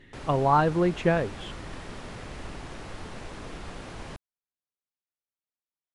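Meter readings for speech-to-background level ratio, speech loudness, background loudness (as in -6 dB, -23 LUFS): 17.0 dB, -24.5 LUFS, -41.5 LUFS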